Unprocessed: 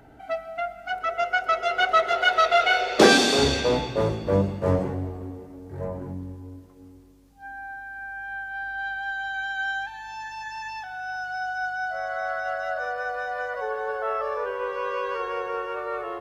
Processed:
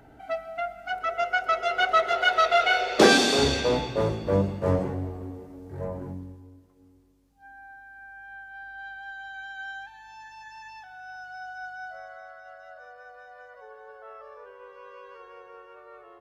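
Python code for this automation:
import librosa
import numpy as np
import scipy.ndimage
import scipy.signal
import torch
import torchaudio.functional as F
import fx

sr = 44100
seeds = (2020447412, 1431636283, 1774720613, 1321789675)

y = fx.gain(x, sr, db=fx.line((6.08, -1.5), (6.53, -9.5), (11.87, -9.5), (12.33, -17.5)))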